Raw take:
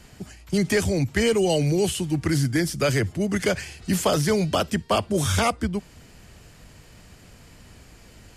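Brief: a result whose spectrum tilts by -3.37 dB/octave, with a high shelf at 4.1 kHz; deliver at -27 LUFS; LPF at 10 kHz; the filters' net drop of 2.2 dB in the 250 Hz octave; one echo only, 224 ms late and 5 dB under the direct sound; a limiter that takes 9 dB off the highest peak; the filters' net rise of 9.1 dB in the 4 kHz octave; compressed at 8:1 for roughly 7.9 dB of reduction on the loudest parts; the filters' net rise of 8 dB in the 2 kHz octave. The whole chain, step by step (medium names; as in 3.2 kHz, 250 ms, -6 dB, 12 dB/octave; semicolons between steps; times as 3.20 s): low-pass 10 kHz; peaking EQ 250 Hz -3.5 dB; peaking EQ 2 kHz +6.5 dB; peaking EQ 4 kHz +5 dB; treble shelf 4.1 kHz +8.5 dB; compression 8:1, threshold -22 dBFS; peak limiter -19 dBFS; delay 224 ms -5 dB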